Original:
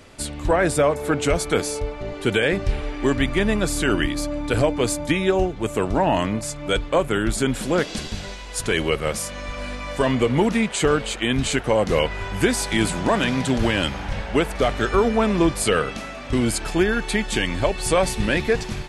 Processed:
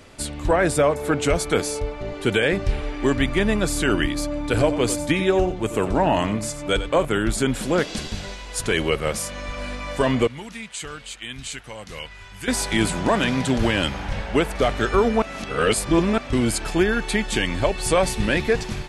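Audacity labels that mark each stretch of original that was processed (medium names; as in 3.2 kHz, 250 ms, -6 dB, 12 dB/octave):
4.420000	7.050000	delay 92 ms -12 dB
10.270000	12.480000	amplifier tone stack bass-middle-treble 5-5-5
15.220000	16.180000	reverse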